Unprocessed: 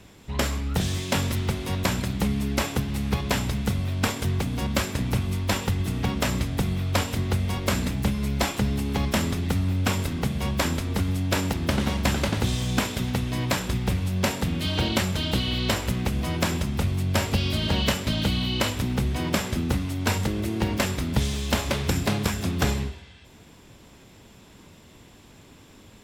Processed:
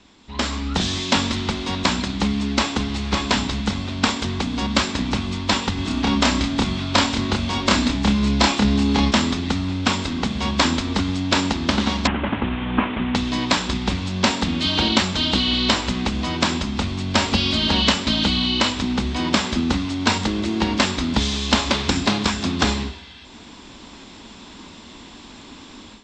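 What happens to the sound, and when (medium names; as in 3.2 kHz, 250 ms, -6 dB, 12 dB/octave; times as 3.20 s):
2.23–3.04 s: echo throw 560 ms, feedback 30%, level -5.5 dB
5.74–9.11 s: doubling 29 ms -3 dB
12.07–13.15 s: CVSD coder 16 kbps
whole clip: steep low-pass 7.7 kHz 48 dB/octave; level rider; graphic EQ 125/250/500/1000/4000 Hz -11/+8/-4/+6/+8 dB; trim -4.5 dB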